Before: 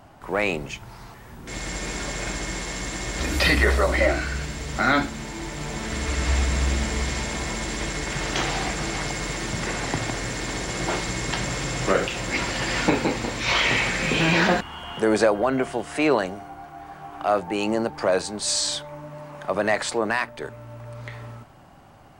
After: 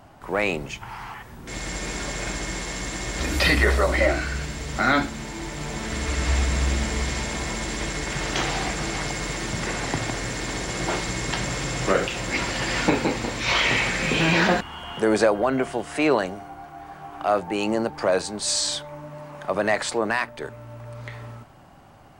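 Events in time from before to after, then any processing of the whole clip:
0.82–1.23 spectral gain 730–3400 Hz +10 dB

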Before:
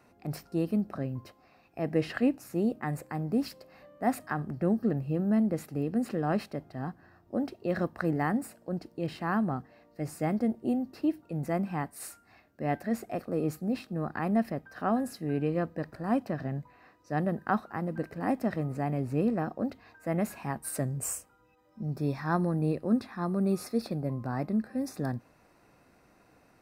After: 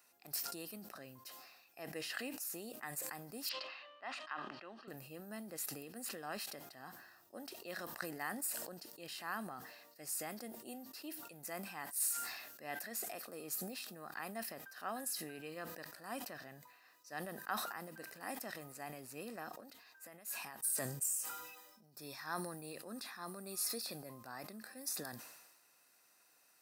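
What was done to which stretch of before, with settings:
3.49–4.88 speaker cabinet 440–3800 Hz, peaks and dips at 460 Hz -9 dB, 740 Hz -5 dB, 1100 Hz +3 dB, 1700 Hz -4 dB, 2900 Hz +7 dB
19.6–21.99 compressor 8:1, threshold -39 dBFS
whole clip: differentiator; notch 2200 Hz, Q 11; sustainer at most 45 dB/s; gain +5.5 dB

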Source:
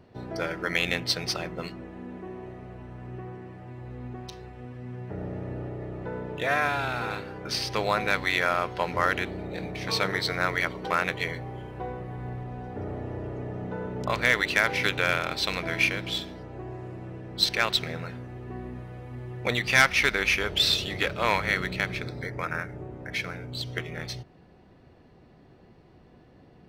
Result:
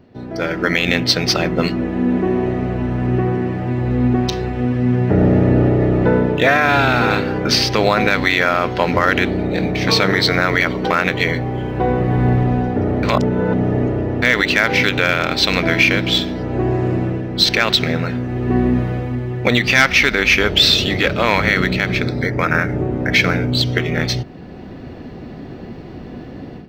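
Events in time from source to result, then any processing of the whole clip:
13.03–14.22 reverse
whole clip: fifteen-band EQ 250 Hz +6 dB, 1000 Hz -3 dB, 10000 Hz -11 dB; AGC gain up to 16 dB; limiter -7 dBFS; gain +4.5 dB

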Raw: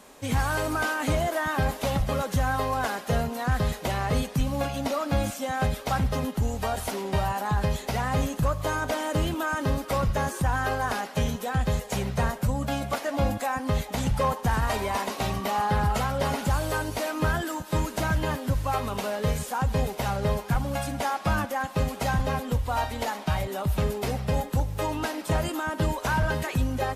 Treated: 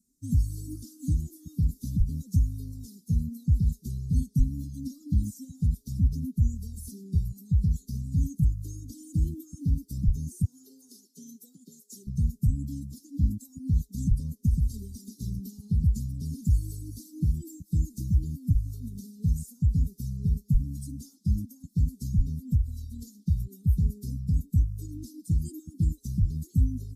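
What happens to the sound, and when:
10.45–12.07 HPF 280 Hz 24 dB/oct
whole clip: per-bin expansion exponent 1.5; inverse Chebyshev band-stop 580–2600 Hz, stop band 50 dB; low shelf 250 Hz +11 dB; gain -4.5 dB

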